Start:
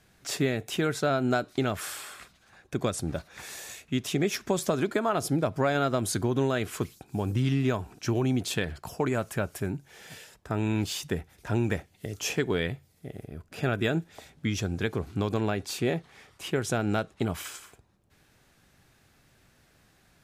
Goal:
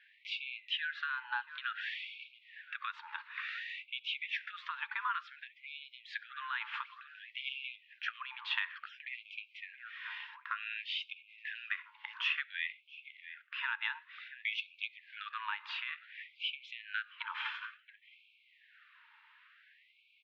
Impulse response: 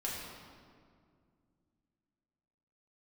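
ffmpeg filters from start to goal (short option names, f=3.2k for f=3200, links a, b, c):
-filter_complex "[0:a]asettb=1/sr,asplit=3[a][b][c];[a]atrim=end=0.634[d];[b]atrim=start=0.63:end=1.86,asetpts=PTS-STARTPTS,afade=t=in:d=0.004:c=qsin,afade=t=out:st=1.226:d=0.004:c=qsin,bandreject=f=2.1k:w=6.1[e];[c]atrim=start=1.856[f];[d][e]acrossfade=d=0.004:c1=hsin:c2=qsin[g];[g][f]acrossfade=d=0.004:c1=qsin:c2=hsin,asplit=2[h][i];[i]adelay=674,lowpass=f=1.4k:p=1,volume=-14.5dB,asplit=2[j][k];[k]adelay=674,lowpass=f=1.4k:p=1,volume=0.36,asplit=2[l][m];[m]adelay=674,lowpass=f=1.4k:p=1,volume=0.36[n];[h][j][l][n]amix=inputs=4:normalize=0,asplit=2[o][p];[1:a]atrim=start_sample=2205,atrim=end_sample=6615,asetrate=48510,aresample=44100[q];[p][q]afir=irnorm=-1:irlink=0,volume=-21.5dB[r];[o][r]amix=inputs=2:normalize=0,highpass=f=270:t=q:w=0.5412,highpass=f=270:t=q:w=1.307,lowpass=f=3.1k:t=q:w=0.5176,lowpass=f=3.1k:t=q:w=0.7071,lowpass=f=3.1k:t=q:w=1.932,afreqshift=110,acompressor=threshold=-32dB:ratio=6,afftfilt=real='re*gte(b*sr/1024,840*pow(2200/840,0.5+0.5*sin(2*PI*0.56*pts/sr)))':imag='im*gte(b*sr/1024,840*pow(2200/840,0.5+0.5*sin(2*PI*0.56*pts/sr)))':win_size=1024:overlap=0.75,volume=5dB"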